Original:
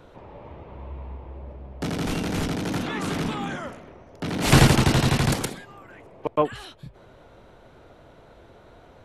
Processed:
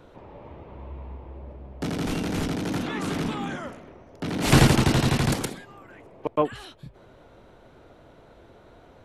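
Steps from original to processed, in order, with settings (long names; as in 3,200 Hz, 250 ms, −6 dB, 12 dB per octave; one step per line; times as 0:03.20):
parametric band 290 Hz +2.5 dB 1.1 octaves
level −2 dB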